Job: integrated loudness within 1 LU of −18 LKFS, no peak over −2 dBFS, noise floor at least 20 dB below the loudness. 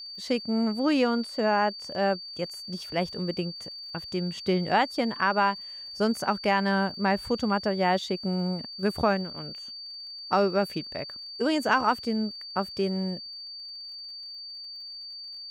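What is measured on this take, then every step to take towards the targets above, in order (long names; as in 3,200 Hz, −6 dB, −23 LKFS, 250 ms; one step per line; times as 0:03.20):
crackle rate 54 per second; interfering tone 4,600 Hz; level of the tone −38 dBFS; integrated loudness −28.0 LKFS; sample peak −10.0 dBFS; target loudness −18.0 LKFS
→ click removal
notch filter 4,600 Hz, Q 30
level +10 dB
brickwall limiter −2 dBFS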